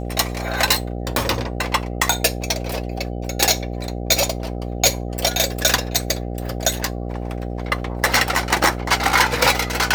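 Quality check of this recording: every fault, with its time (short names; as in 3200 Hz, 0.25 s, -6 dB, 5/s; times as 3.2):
buzz 60 Hz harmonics 13 -27 dBFS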